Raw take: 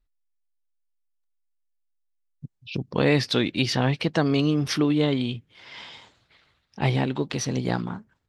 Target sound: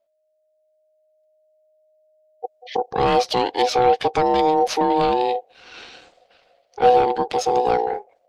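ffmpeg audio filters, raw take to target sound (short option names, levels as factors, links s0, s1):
-af "aeval=exprs='0.422*(cos(1*acos(clip(val(0)/0.422,-1,1)))-cos(1*PI/2))+0.0531*(cos(4*acos(clip(val(0)/0.422,-1,1)))-cos(4*PI/2))+0.0473*(cos(5*acos(clip(val(0)/0.422,-1,1)))-cos(5*PI/2))+0.015*(cos(6*acos(clip(val(0)/0.422,-1,1)))-cos(6*PI/2))':c=same,asubboost=boost=5:cutoff=180,aeval=exprs='val(0)*sin(2*PI*620*n/s)':c=same"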